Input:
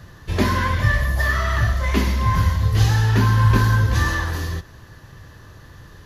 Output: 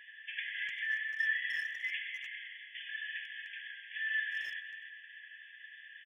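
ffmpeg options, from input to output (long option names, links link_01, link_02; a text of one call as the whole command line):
ffmpeg -i in.wav -filter_complex "[0:a]acompressor=threshold=-25dB:ratio=12,afftfilt=real='re*between(b*sr/4096,1600,3500)':imag='im*between(b*sr/4096,1600,3500)':win_size=4096:overlap=0.75,asplit=2[link_01][link_02];[link_02]adelay=300,highpass=300,lowpass=3400,asoftclip=type=hard:threshold=-34dB,volume=-8dB[link_03];[link_01][link_03]amix=inputs=2:normalize=0,volume=1.5dB" out.wav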